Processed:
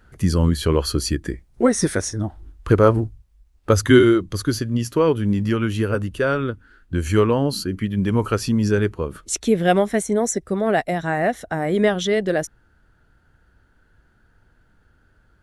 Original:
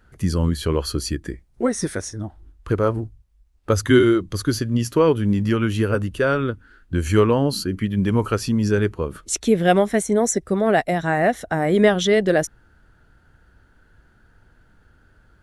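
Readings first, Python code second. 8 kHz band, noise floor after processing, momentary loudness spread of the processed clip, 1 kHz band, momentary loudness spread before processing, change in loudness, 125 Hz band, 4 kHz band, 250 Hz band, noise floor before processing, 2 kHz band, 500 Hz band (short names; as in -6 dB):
+0.5 dB, -59 dBFS, 10 LU, -0.5 dB, 11 LU, 0.0 dB, +1.0 dB, +0.5 dB, +0.5 dB, -57 dBFS, -0.5 dB, 0.0 dB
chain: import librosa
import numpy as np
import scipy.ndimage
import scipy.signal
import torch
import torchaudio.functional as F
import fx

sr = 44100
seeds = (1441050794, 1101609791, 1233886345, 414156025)

y = fx.rider(x, sr, range_db=10, speed_s=2.0)
y = F.gain(torch.from_numpy(y), -1.0).numpy()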